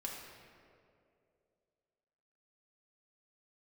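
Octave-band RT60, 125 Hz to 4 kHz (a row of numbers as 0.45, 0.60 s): 2.5, 2.6, 3.0, 2.1, 1.8, 1.3 s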